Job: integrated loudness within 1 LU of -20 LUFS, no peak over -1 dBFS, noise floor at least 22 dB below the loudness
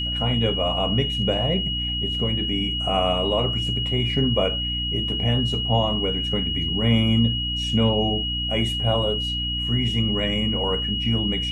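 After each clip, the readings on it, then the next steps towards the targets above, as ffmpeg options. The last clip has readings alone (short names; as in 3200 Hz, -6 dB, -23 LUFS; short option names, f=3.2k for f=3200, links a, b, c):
hum 60 Hz; harmonics up to 300 Hz; hum level -28 dBFS; steady tone 2900 Hz; tone level -25 dBFS; loudness -22.0 LUFS; peak -7.5 dBFS; loudness target -20.0 LUFS
-> -af "bandreject=f=60:t=h:w=4,bandreject=f=120:t=h:w=4,bandreject=f=180:t=h:w=4,bandreject=f=240:t=h:w=4,bandreject=f=300:t=h:w=4"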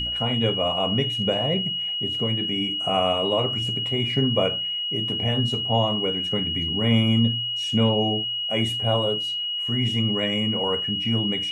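hum none; steady tone 2900 Hz; tone level -25 dBFS
-> -af "bandreject=f=2.9k:w=30"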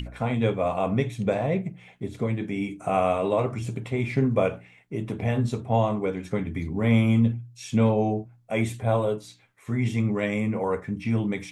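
steady tone none; loudness -26.0 LUFS; peak -10.0 dBFS; loudness target -20.0 LUFS
-> -af "volume=6dB"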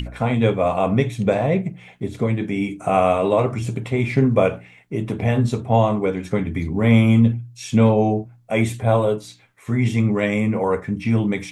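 loudness -20.0 LUFS; peak -4.0 dBFS; noise floor -49 dBFS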